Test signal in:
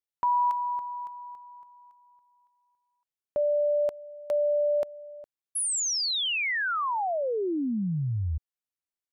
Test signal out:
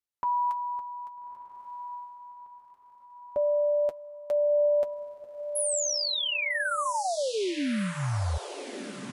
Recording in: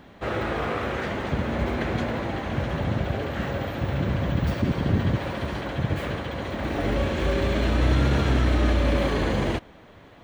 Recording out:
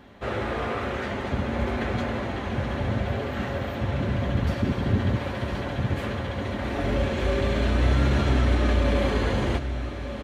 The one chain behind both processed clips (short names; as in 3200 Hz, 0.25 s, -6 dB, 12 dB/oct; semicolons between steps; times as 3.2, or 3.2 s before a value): notch comb 160 Hz; diffused feedback echo 1.284 s, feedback 47%, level -10.5 dB; downsampling 32000 Hz